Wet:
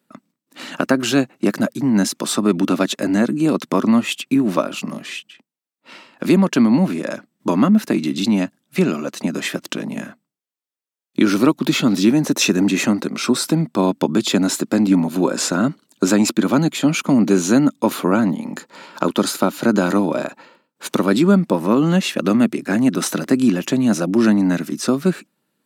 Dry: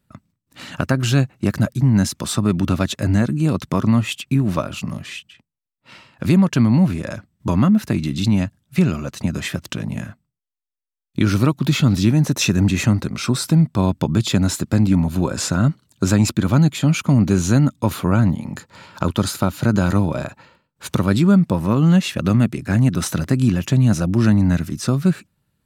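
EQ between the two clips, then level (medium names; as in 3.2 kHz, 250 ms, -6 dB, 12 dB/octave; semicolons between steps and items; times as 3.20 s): high-pass 250 Hz 24 dB/octave; bass shelf 390 Hz +7 dB; +2.5 dB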